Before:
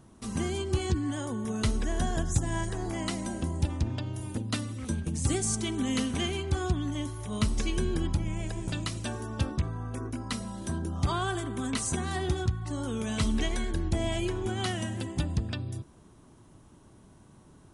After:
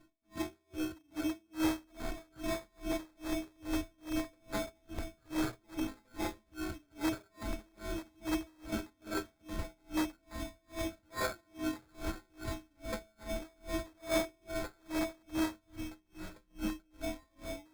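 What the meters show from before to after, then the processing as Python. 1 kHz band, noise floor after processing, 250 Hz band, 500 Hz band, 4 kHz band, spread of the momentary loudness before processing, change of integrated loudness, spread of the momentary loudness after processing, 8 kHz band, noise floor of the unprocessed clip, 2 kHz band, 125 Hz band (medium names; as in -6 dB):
-6.5 dB, -72 dBFS, -5.0 dB, -4.5 dB, -8.5 dB, 6 LU, -8.0 dB, 9 LU, -12.0 dB, -56 dBFS, -5.0 dB, -18.5 dB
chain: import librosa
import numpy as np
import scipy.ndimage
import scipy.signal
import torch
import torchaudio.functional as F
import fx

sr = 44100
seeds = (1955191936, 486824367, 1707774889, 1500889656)

p1 = fx.wiener(x, sr, points=15)
p2 = fx.echo_pitch(p1, sr, ms=667, semitones=-3, count=3, db_per_echo=-3.0)
p3 = fx.stiff_resonator(p2, sr, f0_hz=310.0, decay_s=0.54, stiffness=0.03)
p4 = (np.mod(10.0 ** (41.0 / 20.0) * p3 + 1.0, 2.0) - 1.0) / 10.0 ** (41.0 / 20.0)
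p5 = p3 + (p4 * librosa.db_to_amplitude(-4.0))
p6 = fx.sample_hold(p5, sr, seeds[0], rate_hz=2900.0, jitter_pct=0)
p7 = p6 + fx.echo_split(p6, sr, split_hz=1100.0, low_ms=140, high_ms=770, feedback_pct=52, wet_db=-14.0, dry=0)
p8 = p7 * 10.0 ** (-36 * (0.5 - 0.5 * np.cos(2.0 * np.pi * 2.4 * np.arange(len(p7)) / sr)) / 20.0)
y = p8 * librosa.db_to_amplitude(12.5)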